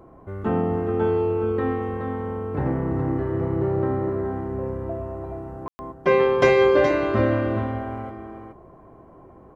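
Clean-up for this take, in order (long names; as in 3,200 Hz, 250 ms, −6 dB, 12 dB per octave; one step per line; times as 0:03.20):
ambience match 0:05.68–0:05.79
echo removal 421 ms −7.5 dB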